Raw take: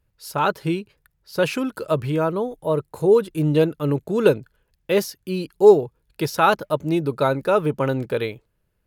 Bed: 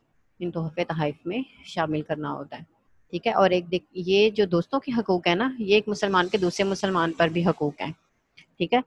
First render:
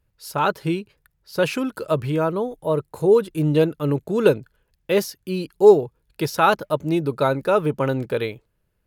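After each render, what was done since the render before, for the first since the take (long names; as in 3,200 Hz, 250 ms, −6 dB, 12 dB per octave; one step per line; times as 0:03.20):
no processing that can be heard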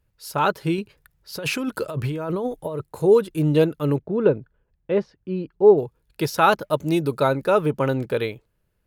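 0:00.78–0:02.84: compressor whose output falls as the input rises −26 dBFS
0:03.98–0:05.78: head-to-tape spacing loss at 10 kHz 44 dB
0:06.73–0:07.20: high-shelf EQ 3,700 Hz +7.5 dB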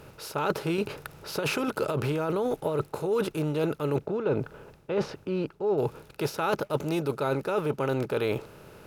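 compressor on every frequency bin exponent 0.6
reversed playback
downward compressor 6 to 1, threshold −25 dBFS, peak gain reduction 16 dB
reversed playback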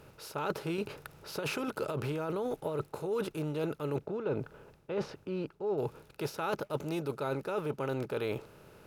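level −6.5 dB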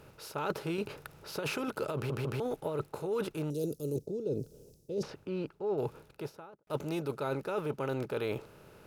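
0:01.95: stutter in place 0.15 s, 3 plays
0:03.50–0:05.03: drawn EQ curve 480 Hz 0 dB, 1,000 Hz −24 dB, 1,800 Hz −28 dB, 3,200 Hz −9 dB, 5,600 Hz +10 dB
0:05.93–0:06.67: fade out and dull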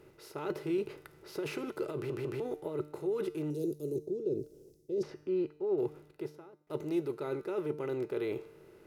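tuned comb filter 150 Hz, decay 0.75 s, harmonics all, mix 60%
hollow resonant body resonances 360/2,000 Hz, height 15 dB, ringing for 50 ms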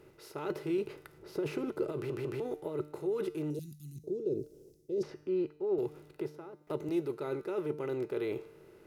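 0:01.18–0:01.92: tilt shelving filter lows +4.5 dB, about 820 Hz
0:03.59–0:04.04: Chebyshev band-stop filter 200–1,700 Hz, order 3
0:05.78–0:06.89: multiband upward and downward compressor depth 70%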